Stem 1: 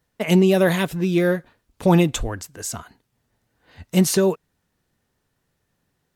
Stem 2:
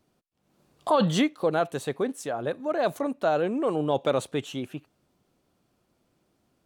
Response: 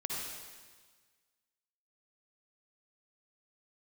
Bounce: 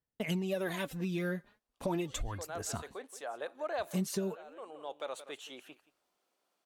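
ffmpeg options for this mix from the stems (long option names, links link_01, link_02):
-filter_complex "[0:a]agate=range=-16dB:threshold=-47dB:ratio=16:detection=peak,aphaser=in_gain=1:out_gain=1:delay=5:decay=0.55:speed=0.37:type=sinusoidal,volume=-11dB,asplit=2[link_01][link_02];[1:a]highpass=620,adelay=950,volume=-4.5dB,afade=type=in:start_time=1.9:duration=0.59:silence=0.316228,asplit=2[link_03][link_04];[link_04]volume=-20.5dB[link_05];[link_02]apad=whole_len=335565[link_06];[link_03][link_06]sidechaincompress=threshold=-37dB:ratio=6:attack=35:release=1340[link_07];[link_05]aecho=0:1:175:1[link_08];[link_01][link_07][link_08]amix=inputs=3:normalize=0,acompressor=threshold=-32dB:ratio=4"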